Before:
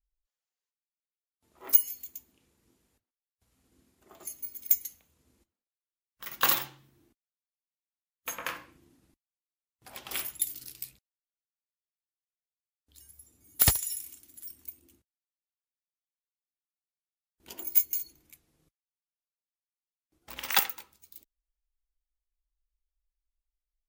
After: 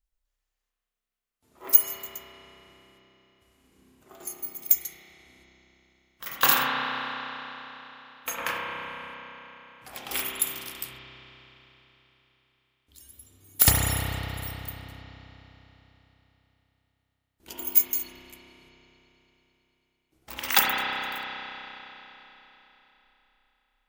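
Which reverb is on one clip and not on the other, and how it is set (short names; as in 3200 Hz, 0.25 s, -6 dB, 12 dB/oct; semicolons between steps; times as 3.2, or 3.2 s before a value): spring tank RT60 3.8 s, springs 31 ms, chirp 80 ms, DRR -3.5 dB; gain +3.5 dB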